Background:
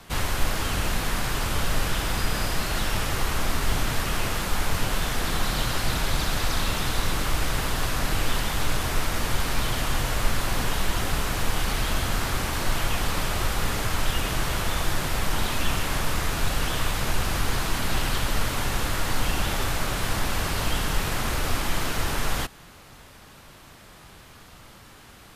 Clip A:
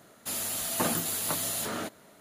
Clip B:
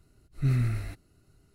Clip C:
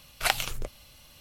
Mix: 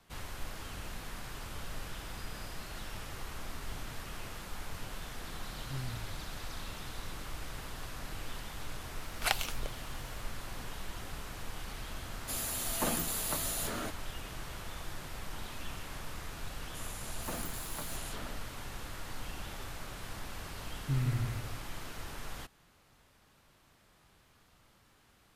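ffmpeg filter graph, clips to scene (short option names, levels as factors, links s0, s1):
-filter_complex "[2:a]asplit=2[s0][s1];[1:a]asplit=2[s2][s3];[0:a]volume=0.141[s4];[s3]afwtdn=0.01[s5];[s1]asplit=2[s6][s7];[s7]adelay=159,lowpass=f=2000:p=1,volume=0.631,asplit=2[s8][s9];[s9]adelay=159,lowpass=f=2000:p=1,volume=0.37,asplit=2[s10][s11];[s11]adelay=159,lowpass=f=2000:p=1,volume=0.37,asplit=2[s12][s13];[s13]adelay=159,lowpass=f=2000:p=1,volume=0.37,asplit=2[s14][s15];[s15]adelay=159,lowpass=f=2000:p=1,volume=0.37[s16];[s6][s8][s10][s12][s14][s16]amix=inputs=6:normalize=0[s17];[s0]atrim=end=1.54,asetpts=PTS-STARTPTS,volume=0.168,afade=t=in:d=0.004:c=hsin,afade=t=out:st=1.536:d=0.004:c=hsin,adelay=5280[s18];[3:a]atrim=end=1.2,asetpts=PTS-STARTPTS,volume=0.531,afade=t=in:d=0.004:c=hsin,afade=t=out:st=1.196:d=0.004:c=hsin,adelay=9010[s19];[s2]atrim=end=2.2,asetpts=PTS-STARTPTS,volume=0.596,afade=t=in:d=0.004:c=hsin,afade=t=out:st=2.196:d=0.004:c=hsin,adelay=12020[s20];[s5]atrim=end=2.2,asetpts=PTS-STARTPTS,volume=0.251,afade=t=in:d=0.004:c=hsin,afade=t=out:st=2.196:d=0.004:c=hsin,adelay=16480[s21];[s17]atrim=end=1.54,asetpts=PTS-STARTPTS,volume=0.447,afade=t=in:d=0.004:c=hsin,afade=t=out:st=1.536:d=0.004:c=hsin,adelay=20460[s22];[s4][s18][s19][s20][s21][s22]amix=inputs=6:normalize=0"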